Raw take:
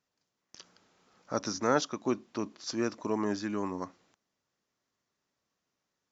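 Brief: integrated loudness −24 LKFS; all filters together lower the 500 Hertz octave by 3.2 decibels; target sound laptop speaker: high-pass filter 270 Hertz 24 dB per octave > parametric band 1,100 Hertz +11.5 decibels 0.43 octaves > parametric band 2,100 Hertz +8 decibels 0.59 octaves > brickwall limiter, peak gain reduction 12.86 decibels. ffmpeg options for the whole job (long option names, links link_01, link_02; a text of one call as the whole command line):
ffmpeg -i in.wav -af "highpass=frequency=270:width=0.5412,highpass=frequency=270:width=1.3066,equalizer=frequency=500:width_type=o:gain=-4.5,equalizer=frequency=1100:width_type=o:width=0.43:gain=11.5,equalizer=frequency=2100:width_type=o:width=0.59:gain=8,volume=11.5dB,alimiter=limit=-11.5dB:level=0:latency=1" out.wav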